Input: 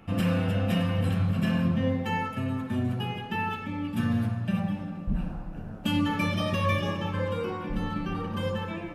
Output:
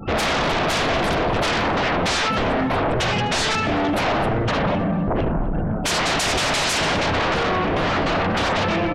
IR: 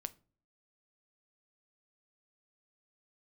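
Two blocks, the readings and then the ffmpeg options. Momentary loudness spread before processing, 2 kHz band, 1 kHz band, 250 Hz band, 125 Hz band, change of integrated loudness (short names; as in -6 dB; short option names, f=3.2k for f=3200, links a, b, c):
7 LU, +13.5 dB, +13.0 dB, +4.0 dB, +2.0 dB, +8.5 dB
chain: -filter_complex "[0:a]asplit=2[a][b];[1:a]atrim=start_sample=2205[c];[b][c]afir=irnorm=-1:irlink=0,volume=-7dB[d];[a][d]amix=inputs=2:normalize=0,afftfilt=real='re*gte(hypot(re,im),0.00501)':imag='im*gte(hypot(re,im),0.00501)':win_size=1024:overlap=0.75,aeval=exprs='0.266*sin(PI/2*8.91*val(0)/0.266)':c=same,lowpass=10k,asplit=2[e][f];[f]adelay=252,lowpass=f=3.6k:p=1,volume=-17.5dB,asplit=2[g][h];[h]adelay=252,lowpass=f=3.6k:p=1,volume=0.34,asplit=2[i][j];[j]adelay=252,lowpass=f=3.6k:p=1,volume=0.34[k];[e][g][i][k]amix=inputs=4:normalize=0,adynamicequalizer=threshold=0.02:dfrequency=670:dqfactor=4.6:tfrequency=670:tqfactor=4.6:attack=5:release=100:ratio=0.375:range=2:mode=boostabove:tftype=bell,volume=-6.5dB"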